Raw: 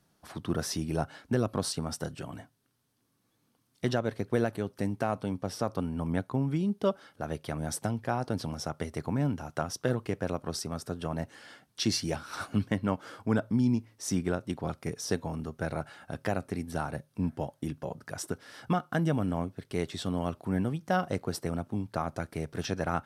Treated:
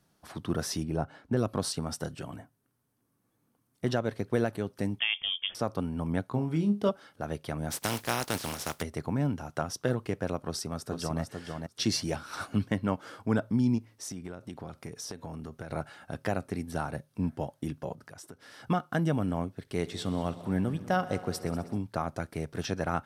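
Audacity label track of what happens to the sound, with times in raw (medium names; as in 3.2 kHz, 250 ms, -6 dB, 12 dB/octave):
0.830000	1.370000	treble shelf 2.3 kHz -11.5 dB
2.360000	3.870000	peaking EQ 4.1 kHz -10 dB 1.7 oct
4.990000	5.550000	frequency inversion carrier 3.4 kHz
6.270000	6.890000	flutter echo walls apart 4.2 m, dies away in 0.21 s
7.700000	8.810000	spectral contrast reduction exponent 0.41
10.450000	11.210000	echo throw 450 ms, feedback 15%, level -5 dB
13.780000	15.700000	compression 12:1, threshold -35 dBFS
17.930000	18.600000	compression 3:1, threshold -47 dBFS
19.600000	21.780000	multi-head delay 64 ms, heads all three, feedback 59%, level -21 dB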